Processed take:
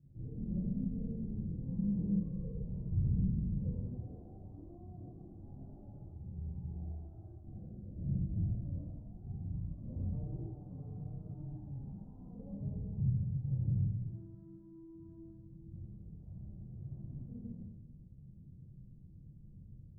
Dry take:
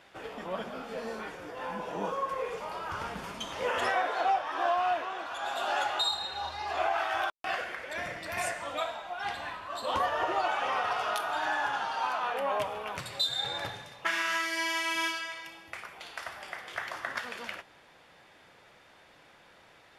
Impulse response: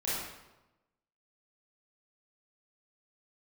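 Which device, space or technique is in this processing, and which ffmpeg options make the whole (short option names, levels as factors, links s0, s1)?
club heard from the street: -filter_complex "[0:a]alimiter=level_in=1.12:limit=0.0631:level=0:latency=1:release=79,volume=0.891,lowpass=f=160:w=0.5412,lowpass=f=160:w=1.3066[s0];[1:a]atrim=start_sample=2205[s1];[s0][s1]afir=irnorm=-1:irlink=0,asettb=1/sr,asplit=3[s2][s3][s4];[s2]atrim=end=10.124[s5];[s3]atrim=start=10.12:end=11.57,asetpts=PTS-STARTPTS,afade=t=in:d=0.004:c=qsin,afade=t=out:st=1.446:d=0.004:c=qsin,aecho=1:1:6.7:0.58,atrim=end_sample=63945[s6];[s4]atrim=start=11.566[s7];[s5][s6]acrossfade=d=0.004:c1=hsin:c2=qsin[s8];[s8][s7]acrossfade=d=0.004:c1=qsin:c2=hsin,volume=4.47"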